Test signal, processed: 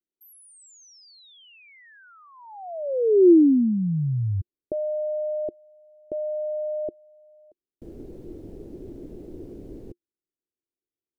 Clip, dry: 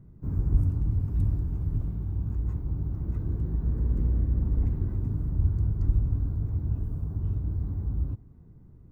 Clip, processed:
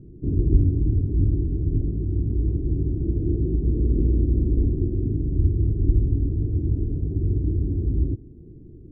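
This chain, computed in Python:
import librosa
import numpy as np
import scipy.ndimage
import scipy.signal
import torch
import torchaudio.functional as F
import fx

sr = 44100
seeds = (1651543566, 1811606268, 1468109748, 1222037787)

p1 = fx.rider(x, sr, range_db=10, speed_s=2.0)
p2 = x + (p1 * 10.0 ** (2.5 / 20.0))
p3 = fx.curve_eq(p2, sr, hz=(200.0, 350.0, 1100.0), db=(0, 13, -26))
y = p3 * 10.0 ** (-2.5 / 20.0)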